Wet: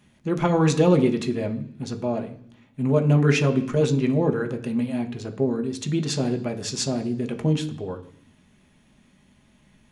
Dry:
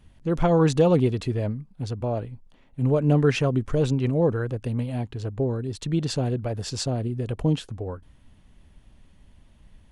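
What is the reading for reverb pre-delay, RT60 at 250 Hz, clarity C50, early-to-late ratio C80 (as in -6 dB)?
3 ms, 0.95 s, 13.5 dB, 16.5 dB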